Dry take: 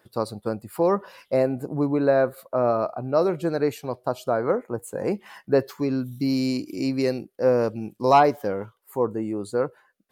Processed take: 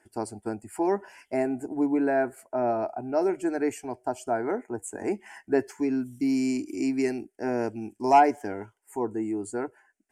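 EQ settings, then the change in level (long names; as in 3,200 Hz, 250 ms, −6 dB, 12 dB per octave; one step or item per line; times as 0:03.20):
low-pass with resonance 8,000 Hz, resonance Q 2.4
phaser with its sweep stopped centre 780 Hz, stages 8
0.0 dB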